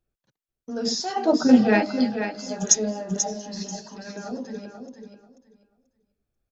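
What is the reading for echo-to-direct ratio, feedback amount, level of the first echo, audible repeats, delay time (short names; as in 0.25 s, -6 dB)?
-8.0 dB, 19%, -8.0 dB, 2, 0.487 s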